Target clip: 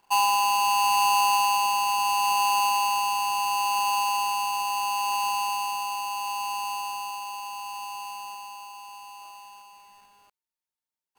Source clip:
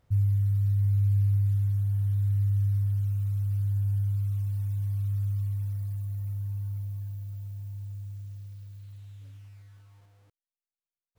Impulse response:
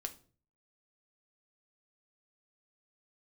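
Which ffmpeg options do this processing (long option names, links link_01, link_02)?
-af "acrusher=bits=6:mode=log:mix=0:aa=0.000001,aeval=exprs='val(0)*sgn(sin(2*PI*910*n/s))':channel_layout=same,volume=1.5dB"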